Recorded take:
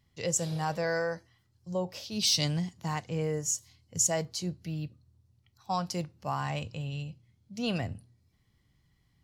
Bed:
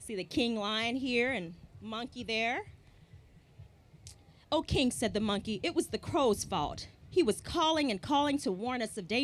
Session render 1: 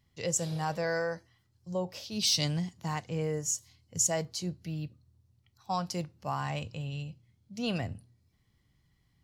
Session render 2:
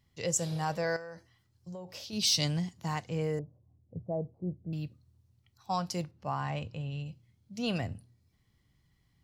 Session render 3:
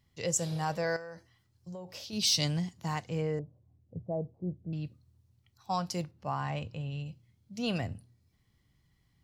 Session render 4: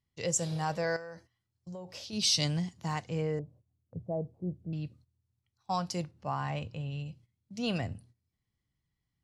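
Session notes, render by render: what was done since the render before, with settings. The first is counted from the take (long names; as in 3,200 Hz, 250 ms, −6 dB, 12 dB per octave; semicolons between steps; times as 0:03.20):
level −1 dB
0:00.96–0:02.13: downward compressor 8 to 1, threshold −39 dBFS; 0:03.39–0:04.73: inverse Chebyshev low-pass filter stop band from 3,000 Hz, stop band 70 dB; 0:06.11–0:07.06: low-pass filter 2,700 Hz 6 dB per octave
0:03.21–0:04.85: high-frequency loss of the air 81 metres
noise gate −56 dBFS, range −13 dB; low-pass filter 11,000 Hz 24 dB per octave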